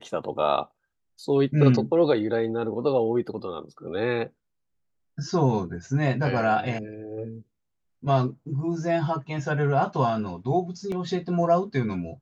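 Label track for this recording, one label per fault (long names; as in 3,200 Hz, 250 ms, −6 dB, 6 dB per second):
10.920000	10.920000	drop-out 2.1 ms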